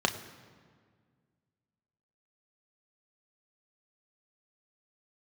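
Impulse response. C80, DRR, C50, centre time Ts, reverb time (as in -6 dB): 13.0 dB, 4.5 dB, 12.0 dB, 16 ms, 1.8 s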